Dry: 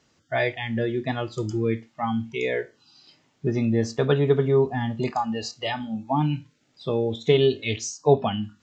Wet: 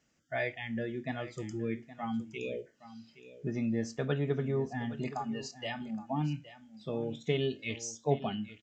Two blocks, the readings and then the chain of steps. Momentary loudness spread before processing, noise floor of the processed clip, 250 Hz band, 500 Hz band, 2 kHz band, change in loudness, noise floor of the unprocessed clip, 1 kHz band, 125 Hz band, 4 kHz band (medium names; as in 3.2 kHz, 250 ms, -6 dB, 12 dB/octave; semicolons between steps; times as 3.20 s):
10 LU, -66 dBFS, -8.5 dB, -12.5 dB, -8.5 dB, -10.5 dB, -66 dBFS, -11.5 dB, -10.0 dB, -11.0 dB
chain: spectral selection erased 2.38–2.67 s, 650–2300 Hz; fifteen-band graphic EQ 100 Hz -9 dB, 400 Hz -7 dB, 1 kHz -9 dB, 4 kHz -9 dB; delay 818 ms -15 dB; trim -6 dB